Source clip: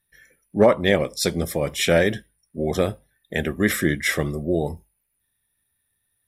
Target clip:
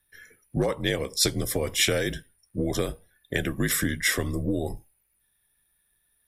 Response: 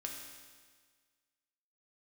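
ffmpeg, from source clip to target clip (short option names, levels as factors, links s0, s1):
-filter_complex "[0:a]acrossover=split=4000[s0][s1];[s0]acompressor=threshold=0.0501:ratio=6[s2];[s2][s1]amix=inputs=2:normalize=0,afreqshift=-54,volume=1.41"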